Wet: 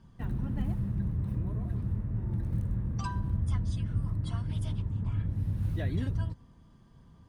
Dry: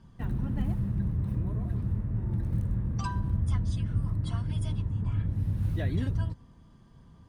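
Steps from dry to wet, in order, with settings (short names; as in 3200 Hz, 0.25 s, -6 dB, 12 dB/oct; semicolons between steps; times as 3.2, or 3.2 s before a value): 4.51–5.09 Doppler distortion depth 0.26 ms; gain -2 dB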